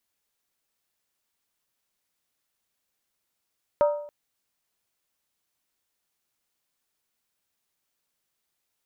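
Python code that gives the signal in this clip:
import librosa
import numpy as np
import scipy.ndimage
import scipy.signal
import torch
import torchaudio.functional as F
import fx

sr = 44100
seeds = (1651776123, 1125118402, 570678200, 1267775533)

y = fx.strike_skin(sr, length_s=0.28, level_db=-15, hz=588.0, decay_s=0.63, tilt_db=8.0, modes=5)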